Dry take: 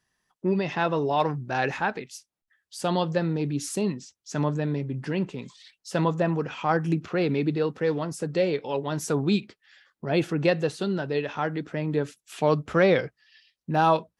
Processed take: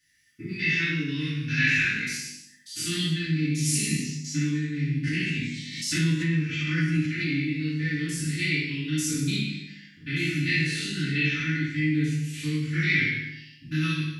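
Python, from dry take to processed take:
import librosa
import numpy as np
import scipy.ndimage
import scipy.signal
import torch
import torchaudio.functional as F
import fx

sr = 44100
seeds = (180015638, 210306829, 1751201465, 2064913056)

y = fx.spec_steps(x, sr, hold_ms=100)
y = fx.peak_eq(y, sr, hz=2100.0, db=4.5, octaves=0.32)
y = fx.echo_multitap(y, sr, ms=(61, 101, 153, 250), db=(-8.0, -11.0, -12.5, -16.5))
y = fx.rev_fdn(y, sr, rt60_s=0.62, lf_ratio=1.5, hf_ratio=0.85, size_ms=20.0, drr_db=-7.0)
y = fx.rider(y, sr, range_db=4, speed_s=0.5)
y = scipy.signal.sosfilt(scipy.signal.ellip(3, 1.0, 70, [250.0, 1900.0], 'bandstop', fs=sr, output='sos'), y)
y = fx.low_shelf_res(y, sr, hz=300.0, db=-6.0, q=1.5)
y = fx.hum_notches(y, sr, base_hz=50, count=6)
y = fx.doubler(y, sr, ms=20.0, db=-3.5)
y = fx.pre_swell(y, sr, db_per_s=51.0, at=(5.07, 7.44))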